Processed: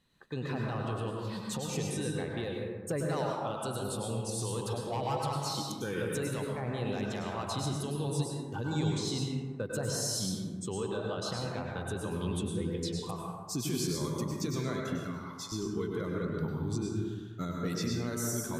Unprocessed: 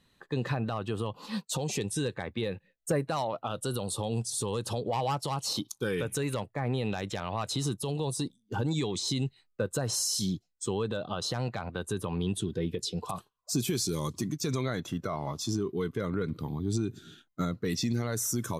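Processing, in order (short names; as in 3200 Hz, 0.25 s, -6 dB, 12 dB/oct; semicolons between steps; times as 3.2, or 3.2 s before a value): 14.99–15.52 HPF 1200 Hz 24 dB/oct; plate-style reverb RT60 1.5 s, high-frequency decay 0.35×, pre-delay 90 ms, DRR -1.5 dB; gain -6 dB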